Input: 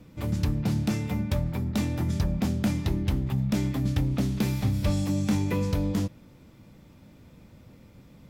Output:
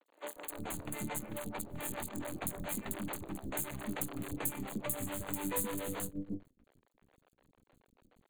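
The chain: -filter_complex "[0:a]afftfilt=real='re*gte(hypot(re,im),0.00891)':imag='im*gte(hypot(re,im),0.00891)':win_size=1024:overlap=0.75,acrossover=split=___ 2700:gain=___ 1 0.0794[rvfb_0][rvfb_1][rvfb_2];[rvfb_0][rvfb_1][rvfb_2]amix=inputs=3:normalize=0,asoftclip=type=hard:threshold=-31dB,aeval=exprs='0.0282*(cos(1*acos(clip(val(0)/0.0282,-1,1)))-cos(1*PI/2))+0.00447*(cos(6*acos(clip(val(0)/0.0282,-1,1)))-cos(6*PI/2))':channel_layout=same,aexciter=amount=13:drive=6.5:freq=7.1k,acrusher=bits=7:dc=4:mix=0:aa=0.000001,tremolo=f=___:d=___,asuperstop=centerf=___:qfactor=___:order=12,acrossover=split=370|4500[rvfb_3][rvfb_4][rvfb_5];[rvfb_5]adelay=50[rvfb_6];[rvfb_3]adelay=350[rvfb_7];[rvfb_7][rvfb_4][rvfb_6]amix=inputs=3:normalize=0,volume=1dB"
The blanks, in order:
290, 0.1, 7, 0.91, 5400, 3.2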